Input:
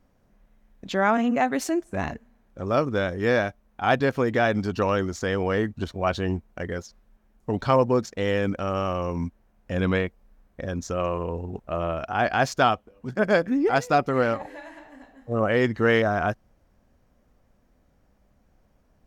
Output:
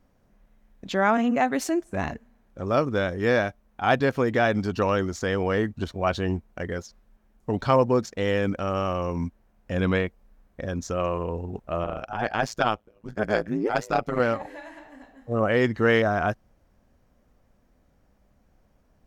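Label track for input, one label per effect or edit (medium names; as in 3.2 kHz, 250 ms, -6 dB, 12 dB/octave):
11.840000	14.200000	AM modulator 110 Hz, depth 85%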